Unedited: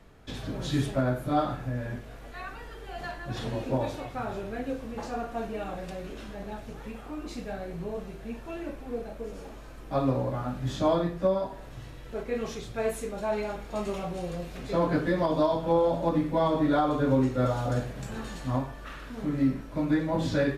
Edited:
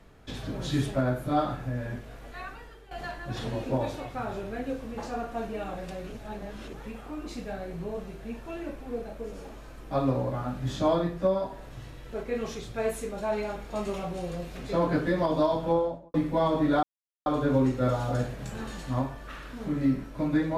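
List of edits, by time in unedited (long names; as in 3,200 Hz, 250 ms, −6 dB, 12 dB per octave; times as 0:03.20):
0:02.42–0:02.91: fade out linear, to −12.5 dB
0:06.12–0:06.73: reverse
0:15.64–0:16.14: fade out and dull
0:16.83: splice in silence 0.43 s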